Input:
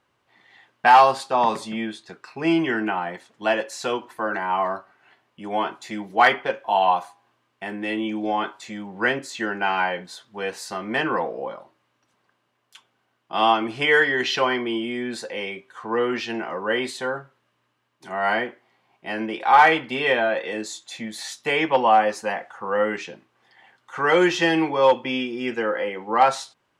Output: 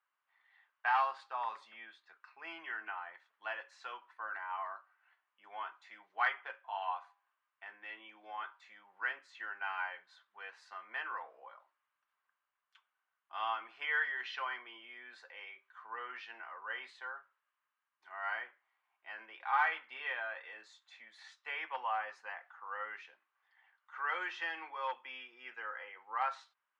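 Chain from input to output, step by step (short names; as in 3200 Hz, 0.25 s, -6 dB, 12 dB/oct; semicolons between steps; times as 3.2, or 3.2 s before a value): ladder band-pass 1600 Hz, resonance 30%; gain -4 dB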